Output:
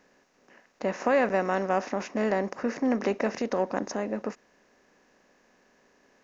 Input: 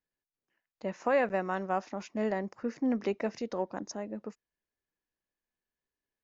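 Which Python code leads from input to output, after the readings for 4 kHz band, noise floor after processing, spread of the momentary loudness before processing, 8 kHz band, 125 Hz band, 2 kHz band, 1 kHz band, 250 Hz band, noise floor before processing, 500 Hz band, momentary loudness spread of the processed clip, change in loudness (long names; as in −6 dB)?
+5.5 dB, −65 dBFS, 12 LU, can't be measured, +4.5 dB, +5.5 dB, +5.0 dB, +4.5 dB, below −85 dBFS, +5.0 dB, 8 LU, +5.0 dB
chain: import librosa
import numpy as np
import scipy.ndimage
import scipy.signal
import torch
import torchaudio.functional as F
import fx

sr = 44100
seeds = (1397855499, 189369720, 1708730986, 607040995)

y = fx.bin_compress(x, sr, power=0.6)
y = F.gain(torch.from_numpy(y), 2.0).numpy()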